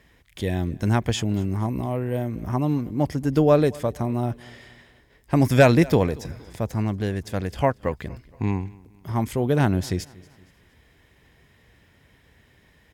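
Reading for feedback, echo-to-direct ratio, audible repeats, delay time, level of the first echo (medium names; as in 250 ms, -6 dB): 43%, -22.0 dB, 2, 233 ms, -23.0 dB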